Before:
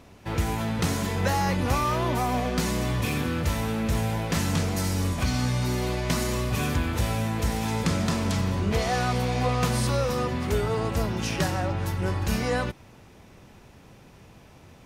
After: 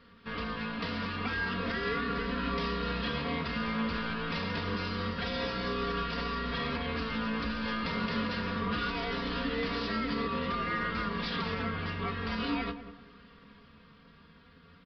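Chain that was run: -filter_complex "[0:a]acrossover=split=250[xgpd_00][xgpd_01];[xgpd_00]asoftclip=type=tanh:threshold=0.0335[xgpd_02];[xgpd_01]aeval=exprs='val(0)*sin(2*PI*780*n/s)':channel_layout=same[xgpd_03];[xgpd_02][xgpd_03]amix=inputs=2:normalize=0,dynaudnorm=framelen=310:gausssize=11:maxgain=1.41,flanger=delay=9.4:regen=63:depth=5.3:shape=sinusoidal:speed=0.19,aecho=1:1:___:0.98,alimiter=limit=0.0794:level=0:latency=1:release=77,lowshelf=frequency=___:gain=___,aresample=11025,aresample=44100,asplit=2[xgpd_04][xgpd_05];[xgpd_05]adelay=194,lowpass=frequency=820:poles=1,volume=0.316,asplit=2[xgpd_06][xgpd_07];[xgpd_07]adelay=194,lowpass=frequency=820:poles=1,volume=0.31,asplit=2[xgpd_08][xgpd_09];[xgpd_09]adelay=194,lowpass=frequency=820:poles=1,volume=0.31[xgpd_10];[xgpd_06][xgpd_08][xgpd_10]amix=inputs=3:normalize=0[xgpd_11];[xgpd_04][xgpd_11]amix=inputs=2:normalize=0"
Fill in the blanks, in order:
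4.3, 66, -12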